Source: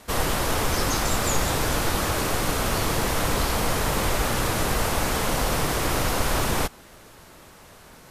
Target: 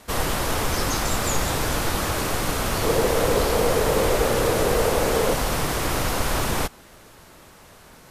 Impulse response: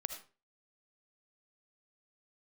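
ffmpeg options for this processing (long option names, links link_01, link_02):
-filter_complex "[0:a]asettb=1/sr,asplit=3[link_01][link_02][link_03];[link_01]atrim=end=2.834[link_04];[link_02]atrim=start=2.83:end=5.34,asetpts=PTS-STARTPTS,afade=type=in:duration=0.004:curve=qsin,afade=type=out:start_time=2.506:duration=0.004:curve=qsin,equalizer=frequency=470:width_type=o:width=0.74:gain=12[link_05];[link_03]atrim=start=5.336[link_06];[link_04][link_05]acrossfade=duration=0.004:curve1=hsin:curve2=qsin[link_07];[link_07][link_06]acrossfade=duration=0.004:curve1=qsin:curve2=hsin"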